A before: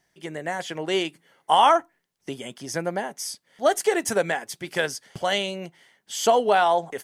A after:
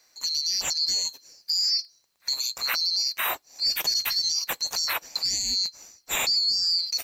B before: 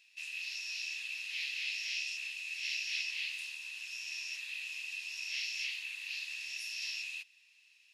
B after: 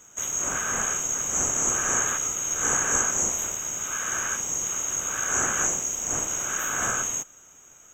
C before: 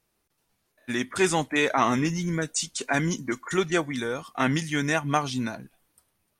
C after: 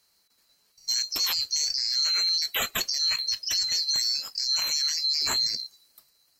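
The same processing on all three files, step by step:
band-swap scrambler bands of 4000 Hz; in parallel at +2 dB: negative-ratio compressor -31 dBFS, ratio -1; on the sum: limiter -13 dBFS; match loudness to -24 LUFS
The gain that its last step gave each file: -2.5, +6.5, -3.0 dB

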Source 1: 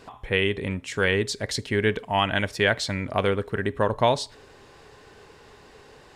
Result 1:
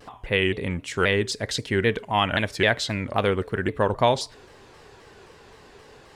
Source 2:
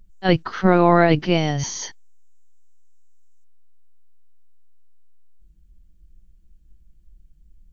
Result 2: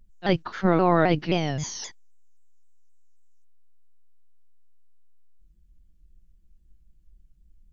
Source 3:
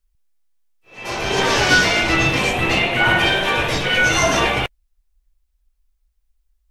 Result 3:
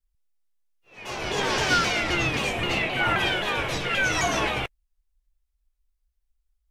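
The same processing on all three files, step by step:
shaped vibrato saw down 3.8 Hz, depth 160 cents; match loudness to -24 LUFS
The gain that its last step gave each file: +1.0, -5.5, -8.0 dB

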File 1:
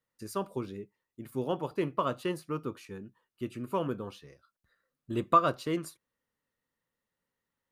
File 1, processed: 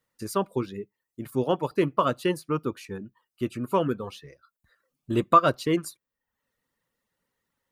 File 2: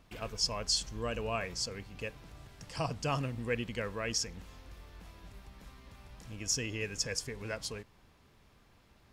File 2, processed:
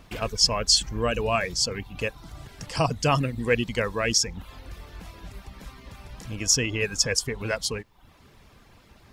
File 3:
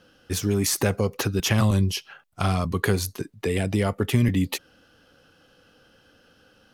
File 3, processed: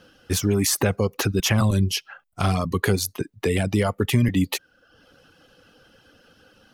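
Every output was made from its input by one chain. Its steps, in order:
reverb removal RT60 0.61 s; in parallel at -0.5 dB: limiter -17.5 dBFS; on the sum: normalise peaks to -6 dBFS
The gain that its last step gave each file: +2.0, +5.5, -1.5 dB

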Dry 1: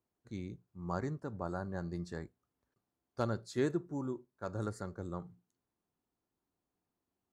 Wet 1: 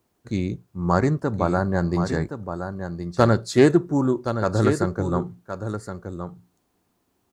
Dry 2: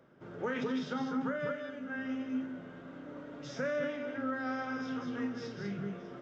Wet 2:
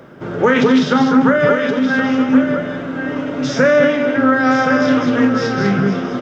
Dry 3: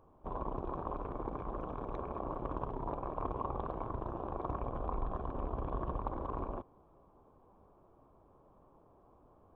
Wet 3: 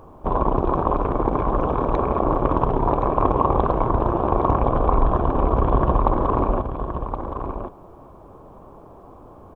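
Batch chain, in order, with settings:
on a send: echo 1.07 s -8.5 dB; on the sum: Doppler distortion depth 0.1 ms; normalise peaks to -2 dBFS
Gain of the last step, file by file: +17.0, +22.0, +18.5 dB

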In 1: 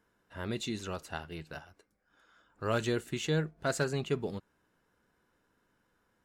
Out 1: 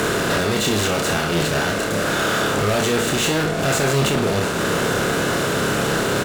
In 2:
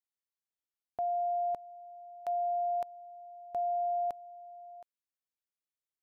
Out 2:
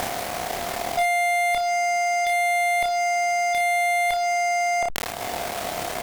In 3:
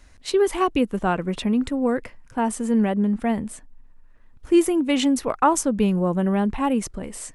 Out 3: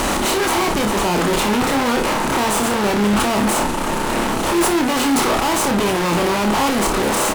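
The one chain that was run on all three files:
per-bin compression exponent 0.4; dynamic EQ 860 Hz, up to +6 dB, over -31 dBFS, Q 0.75; upward compressor, threshold -20 dBFS; fuzz box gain 34 dB, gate -42 dBFS; early reflections 29 ms -5.5 dB, 58 ms -10.5 dB; sustainer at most 33 dB/s; gain -5 dB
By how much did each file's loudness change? +15.5, +11.5, +4.5 LU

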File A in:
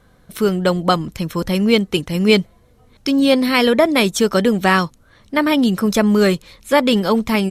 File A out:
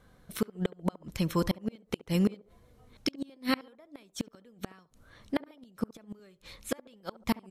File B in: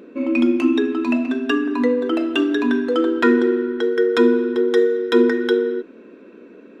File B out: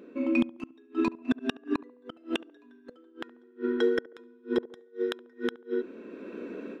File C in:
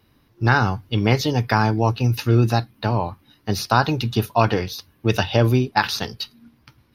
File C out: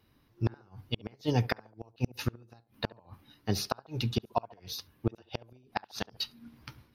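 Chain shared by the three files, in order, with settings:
AGC gain up to 12.5 dB; flipped gate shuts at -7 dBFS, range -36 dB; on a send: narrowing echo 70 ms, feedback 43%, band-pass 550 Hz, level -17 dB; on the sum: gain -7.5 dB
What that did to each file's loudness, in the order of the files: -18.0, -13.5, -15.0 LU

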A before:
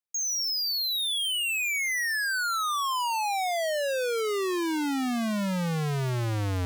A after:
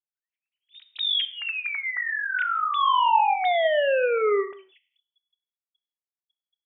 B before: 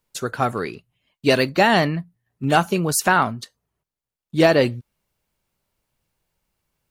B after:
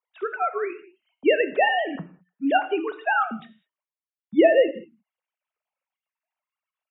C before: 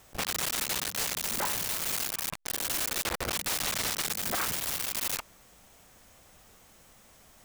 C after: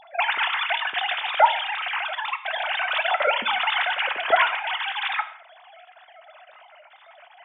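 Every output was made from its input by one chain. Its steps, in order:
sine-wave speech; non-linear reverb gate 0.23 s falling, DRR 9.5 dB; match loudness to -23 LUFS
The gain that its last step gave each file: +1.5, -3.5, +7.5 dB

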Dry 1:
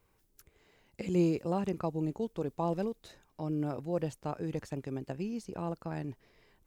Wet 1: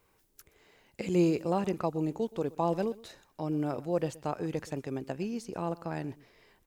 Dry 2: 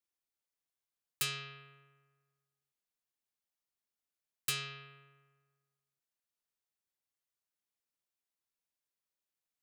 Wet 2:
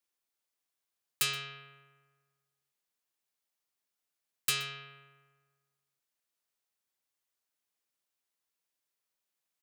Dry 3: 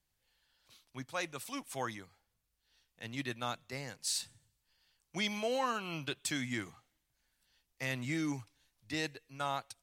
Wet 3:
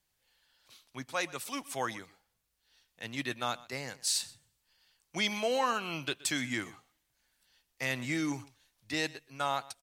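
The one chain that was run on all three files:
low shelf 190 Hz -7.5 dB; echo 0.124 s -20.5 dB; gain +4.5 dB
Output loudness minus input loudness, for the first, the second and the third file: +2.5, +4.0, +4.0 LU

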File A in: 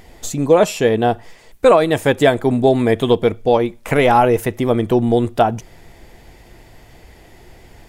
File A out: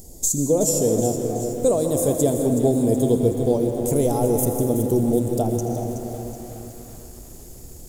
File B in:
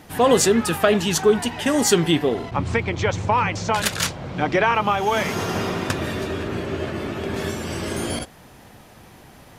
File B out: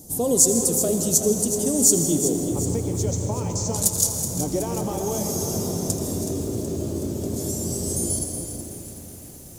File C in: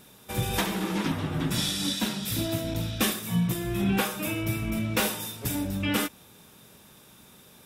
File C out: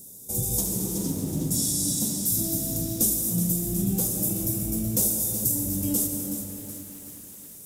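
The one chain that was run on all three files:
EQ curve 290 Hz 0 dB, 570 Hz -4 dB, 1700 Hz -28 dB, 2700 Hz -22 dB, 6800 Hz +12 dB; on a send: thin delay 81 ms, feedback 65%, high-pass 4100 Hz, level -14 dB; on the sum: plate-style reverb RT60 2.9 s, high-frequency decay 0.3×, pre-delay 0.105 s, DRR 5.5 dB; in parallel at +2 dB: compressor 5:1, threshold -26 dBFS; on the sum: de-hum 320.9 Hz, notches 21; lo-fi delay 0.373 s, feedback 55%, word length 6-bit, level -9.5 dB; gain -6.5 dB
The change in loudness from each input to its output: -5.0, -0.5, +3.5 LU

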